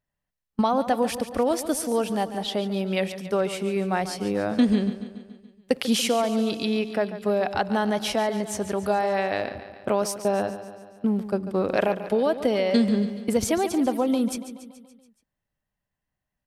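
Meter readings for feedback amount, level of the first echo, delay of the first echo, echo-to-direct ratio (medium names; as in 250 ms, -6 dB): 58%, -12.5 dB, 142 ms, -10.5 dB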